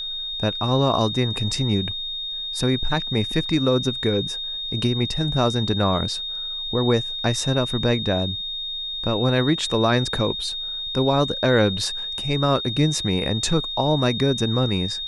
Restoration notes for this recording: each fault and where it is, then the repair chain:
whine 3.7 kHz -27 dBFS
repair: band-stop 3.7 kHz, Q 30

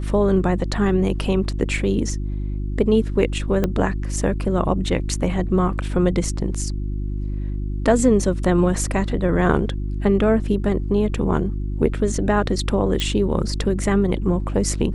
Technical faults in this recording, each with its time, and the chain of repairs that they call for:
hum 50 Hz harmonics 7 -25 dBFS
3.64 s: pop -8 dBFS
13.00 s: pop -9 dBFS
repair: de-click; de-hum 50 Hz, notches 7

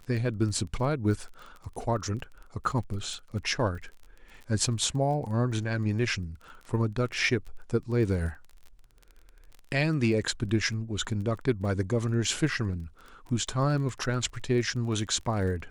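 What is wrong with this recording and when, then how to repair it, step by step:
crackle 25 per s -37 dBFS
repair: de-click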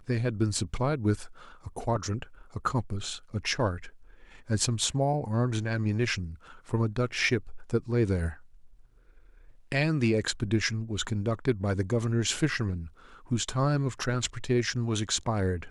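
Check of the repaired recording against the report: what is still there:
nothing left

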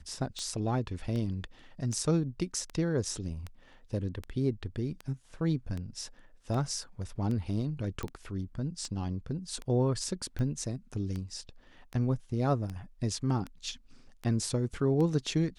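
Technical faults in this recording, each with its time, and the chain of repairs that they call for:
tick 78 rpm -25 dBFS
8.03 s: pop -22 dBFS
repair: de-click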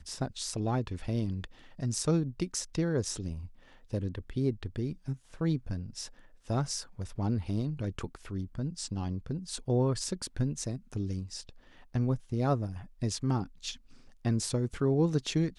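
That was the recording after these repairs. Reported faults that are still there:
nothing left

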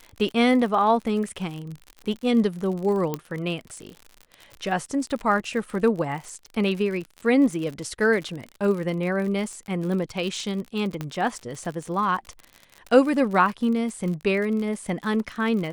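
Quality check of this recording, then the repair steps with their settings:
crackle 51 per s -31 dBFS
3.14 s: pop -13 dBFS
11.01 s: pop -16 dBFS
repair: de-click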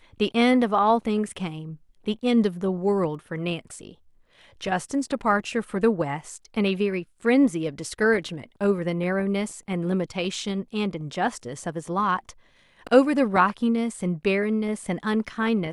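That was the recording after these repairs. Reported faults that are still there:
3.14 s: pop
11.01 s: pop

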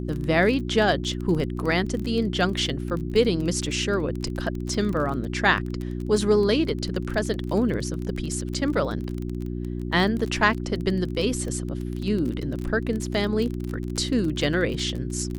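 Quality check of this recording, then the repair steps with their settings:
crackle 25 per s -28 dBFS
hum 60 Hz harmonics 6 -30 dBFS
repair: de-click; de-hum 60 Hz, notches 6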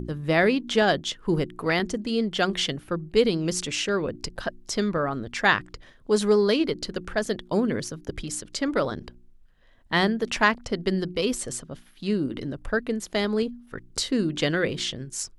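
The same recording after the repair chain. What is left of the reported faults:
nothing left

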